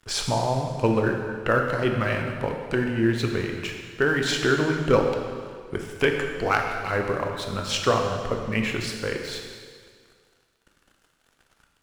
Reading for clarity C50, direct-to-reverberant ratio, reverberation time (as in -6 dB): 4.0 dB, 2.0 dB, 1.9 s